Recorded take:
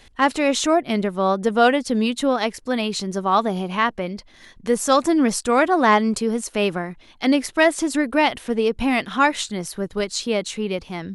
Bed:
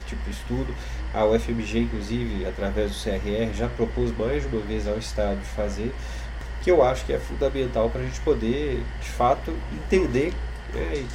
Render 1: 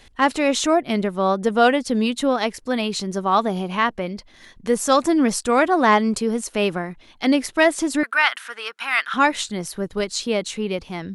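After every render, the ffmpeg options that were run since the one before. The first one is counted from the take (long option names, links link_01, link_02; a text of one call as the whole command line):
ffmpeg -i in.wav -filter_complex "[0:a]asettb=1/sr,asplit=3[link_01][link_02][link_03];[link_01]atrim=end=8.034[link_04];[link_02]atrim=start=8.03:end=9.14,asetpts=PTS-STARTPTS,afade=type=in:duration=0.004:curve=qsin,afade=type=out:start_time=1.106:duration=0.004:curve=qsin,highpass=frequency=1400:width_type=q:width=4.1[link_05];[link_03]atrim=start=9.136[link_06];[link_04][link_05]acrossfade=duration=0.004:curve1=hsin:curve2=qsin[link_07];[link_07][link_06]acrossfade=duration=0.004:curve1=qsin:curve2=hsin" out.wav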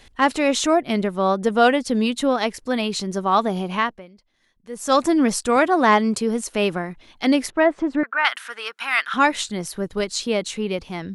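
ffmpeg -i in.wav -filter_complex "[0:a]asettb=1/sr,asplit=3[link_01][link_02][link_03];[link_01]atrim=end=5.564[link_04];[link_02]atrim=start=5.56:end=6.2,asetpts=PTS-STARTPTS,afade=type=in:duration=0.004:curve=qsin,afade=type=out:start_time=0.636:duration=0.004:curve=qsin,highpass=77[link_05];[link_03]atrim=start=6.196[link_06];[link_04][link_05]acrossfade=duration=0.004:curve1=hsin:curve2=qsin[link_07];[link_07][link_06]acrossfade=duration=0.004:curve1=qsin:curve2=hsin,asettb=1/sr,asplit=3[link_08][link_09][link_10];[link_08]atrim=end=7.504[link_11];[link_09]atrim=start=7.5:end=8.25,asetpts=PTS-STARTPTS,afade=type=in:duration=0.004:curve=qsin,afade=type=out:start_time=0.746:duration=0.004:curve=qsin,lowpass=1600[link_12];[link_10]atrim=start=8.246[link_13];[link_11][link_12]acrossfade=duration=0.004:curve1=hsin:curve2=qsin[link_14];[link_14][link_13]acrossfade=duration=0.004:curve1=qsin:curve2=hsin,asplit=3[link_15][link_16][link_17];[link_15]atrim=end=4.12,asetpts=PTS-STARTPTS,afade=type=out:start_time=3.79:duration=0.33:curve=qua:silence=0.112202[link_18];[link_16]atrim=start=4.12:end=4.62,asetpts=PTS-STARTPTS,volume=-19dB[link_19];[link_17]atrim=start=4.62,asetpts=PTS-STARTPTS,afade=type=in:duration=0.33:curve=qua:silence=0.112202[link_20];[link_18][link_19][link_20]concat=n=3:v=0:a=1" out.wav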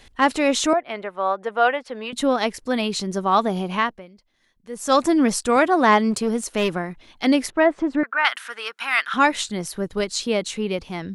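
ffmpeg -i in.wav -filter_complex "[0:a]asettb=1/sr,asplit=3[link_01][link_02][link_03];[link_01]atrim=end=0.734[link_04];[link_02]atrim=start=0.73:end=2.13,asetpts=PTS-STARTPTS,afade=type=in:duration=0.004:curve=qsin,afade=type=out:start_time=1.396:duration=0.004:curve=qsin,acrossover=split=500 2900:gain=0.1 1 0.112[link_05][link_06][link_07];[link_05][link_06][link_07]amix=inputs=3:normalize=0[link_08];[link_03]atrim=start=2.126[link_09];[link_04][link_08]acrossfade=duration=0.004:curve1=hsin:curve2=qsin[link_10];[link_10][link_09]acrossfade=duration=0.004:curve1=qsin:curve2=hsin,asplit=3[link_11][link_12][link_13];[link_11]afade=type=out:start_time=6.1:duration=0.02[link_14];[link_12]aeval=exprs='clip(val(0),-1,0.112)':channel_layout=same,afade=type=in:start_time=6.1:duration=0.02,afade=type=out:start_time=6.72:duration=0.02[link_15];[link_13]afade=type=in:start_time=6.72:duration=0.02[link_16];[link_14][link_15][link_16]amix=inputs=3:normalize=0" out.wav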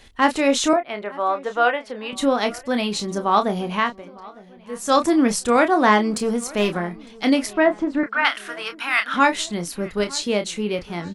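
ffmpeg -i in.wav -filter_complex "[0:a]asplit=2[link_01][link_02];[link_02]adelay=29,volume=-8.5dB[link_03];[link_01][link_03]amix=inputs=2:normalize=0,asplit=2[link_04][link_05];[link_05]adelay=905,lowpass=frequency=3200:poles=1,volume=-22dB,asplit=2[link_06][link_07];[link_07]adelay=905,lowpass=frequency=3200:poles=1,volume=0.51,asplit=2[link_08][link_09];[link_09]adelay=905,lowpass=frequency=3200:poles=1,volume=0.51,asplit=2[link_10][link_11];[link_11]adelay=905,lowpass=frequency=3200:poles=1,volume=0.51[link_12];[link_04][link_06][link_08][link_10][link_12]amix=inputs=5:normalize=0" out.wav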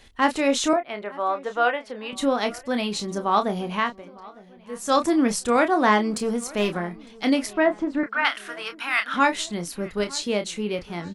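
ffmpeg -i in.wav -af "volume=-3dB" out.wav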